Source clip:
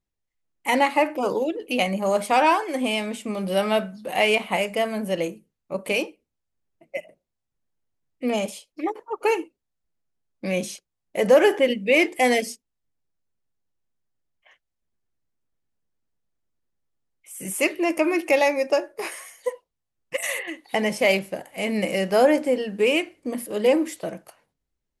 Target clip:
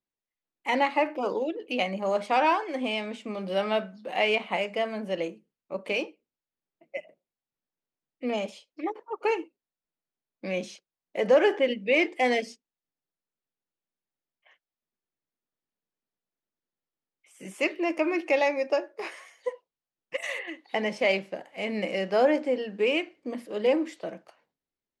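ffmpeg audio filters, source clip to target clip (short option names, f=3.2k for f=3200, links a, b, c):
-filter_complex "[0:a]acrossover=split=170 6000:gain=0.158 1 0.0631[a][b][c];[a][b][c]amix=inputs=3:normalize=0,volume=-4.5dB"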